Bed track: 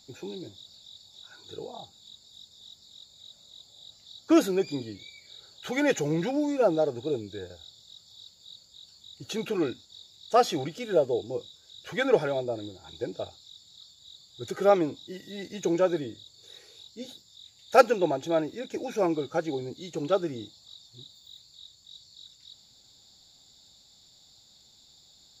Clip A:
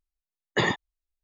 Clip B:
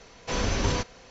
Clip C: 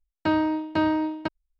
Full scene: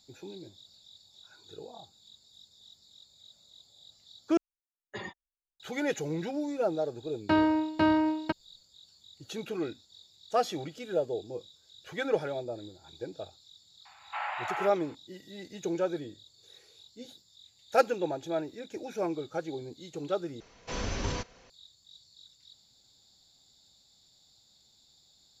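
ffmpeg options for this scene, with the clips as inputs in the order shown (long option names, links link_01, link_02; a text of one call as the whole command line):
ffmpeg -i bed.wav -i cue0.wav -i cue1.wav -i cue2.wav -filter_complex "[2:a]asplit=2[link_01][link_02];[0:a]volume=-6dB[link_03];[1:a]asplit=2[link_04][link_05];[link_05]adelay=4.1,afreqshift=-2.3[link_06];[link_04][link_06]amix=inputs=2:normalize=1[link_07];[link_01]highpass=frequency=380:width_type=q:width=0.5412,highpass=frequency=380:width_type=q:width=1.307,lowpass=frequency=2300:width_type=q:width=0.5176,lowpass=frequency=2300:width_type=q:width=0.7071,lowpass=frequency=2300:width_type=q:width=1.932,afreqshift=340[link_08];[link_03]asplit=3[link_09][link_10][link_11];[link_09]atrim=end=4.374[link_12];[link_07]atrim=end=1.23,asetpts=PTS-STARTPTS,volume=-14dB[link_13];[link_10]atrim=start=5.596:end=20.404[link_14];[link_02]atrim=end=1.1,asetpts=PTS-STARTPTS,volume=-7dB[link_15];[link_11]atrim=start=21.496[link_16];[3:a]atrim=end=1.59,asetpts=PTS-STARTPTS,volume=-1.5dB,afade=type=in:duration=0.004:curve=hsin,afade=type=out:start_time=1.586:duration=0.004:curve=hsin,adelay=7040[link_17];[link_08]atrim=end=1.1,asetpts=PTS-STARTPTS,volume=-2.5dB,afade=type=in:duration=0.004:curve=hsin,afade=type=out:start_time=1.096:duration=0.004:curve=hsin,adelay=13850[link_18];[link_12][link_13]acrossfade=duration=0.004:curve1=hsin:curve2=hsin[link_19];[link_19][link_14]acrossfade=duration=0.004:curve1=hsin:curve2=hsin[link_20];[link_20][link_15]acrossfade=duration=0.004:curve1=hsin:curve2=hsin[link_21];[link_21][link_16]acrossfade=duration=0.004:curve1=hsin:curve2=hsin[link_22];[link_22][link_17][link_18]amix=inputs=3:normalize=0" out.wav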